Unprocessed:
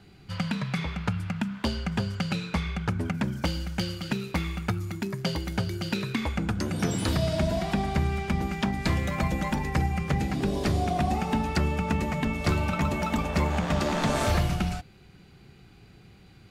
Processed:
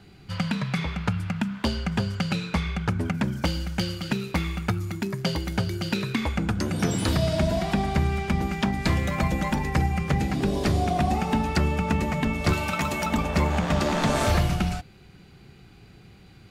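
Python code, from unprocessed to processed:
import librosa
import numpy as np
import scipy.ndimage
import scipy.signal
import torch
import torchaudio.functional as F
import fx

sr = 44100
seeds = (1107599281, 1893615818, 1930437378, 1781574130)

y = fx.tilt_eq(x, sr, slope=2.0, at=(12.53, 13.06))
y = y * librosa.db_to_amplitude(2.5)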